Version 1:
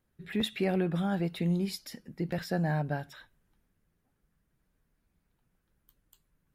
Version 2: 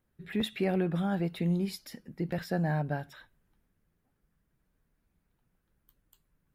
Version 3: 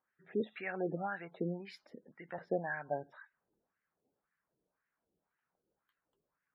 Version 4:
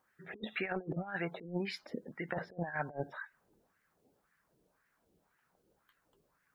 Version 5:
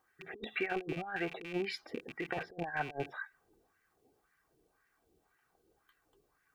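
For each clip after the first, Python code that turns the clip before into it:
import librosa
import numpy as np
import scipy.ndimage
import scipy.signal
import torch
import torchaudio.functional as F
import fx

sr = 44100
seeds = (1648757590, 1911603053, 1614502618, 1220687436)

y1 = fx.peak_eq(x, sr, hz=6200.0, db=-3.5, octaves=2.0)
y2 = fx.wah_lfo(y1, sr, hz=1.9, low_hz=410.0, high_hz=1800.0, q=2.4)
y2 = fx.quant_float(y2, sr, bits=2)
y2 = fx.spec_gate(y2, sr, threshold_db=-25, keep='strong')
y2 = y2 * 10.0 ** (3.5 / 20.0)
y3 = fx.over_compress(y2, sr, threshold_db=-43.0, ratio=-0.5)
y3 = fx.low_shelf(y3, sr, hz=120.0, db=5.0)
y3 = y3 * 10.0 ** (5.0 / 20.0)
y4 = fx.rattle_buzz(y3, sr, strikes_db=-51.0, level_db=-35.0)
y4 = y4 + 0.52 * np.pad(y4, (int(2.6 * sr / 1000.0), 0))[:len(y4)]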